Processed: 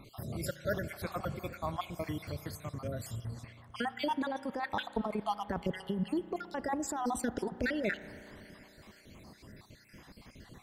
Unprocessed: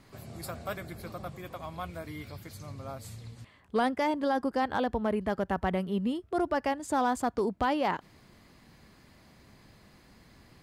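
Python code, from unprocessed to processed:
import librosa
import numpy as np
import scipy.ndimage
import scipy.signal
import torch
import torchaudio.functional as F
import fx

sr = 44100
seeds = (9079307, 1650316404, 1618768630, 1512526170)

y = fx.spec_dropout(x, sr, seeds[0], share_pct=54)
y = fx.over_compress(y, sr, threshold_db=-34.0, ratio=-1.0)
y = fx.rev_spring(y, sr, rt60_s=3.6, pass_ms=(34,), chirp_ms=55, drr_db=14.5)
y = F.gain(torch.from_numpy(y), 2.0).numpy()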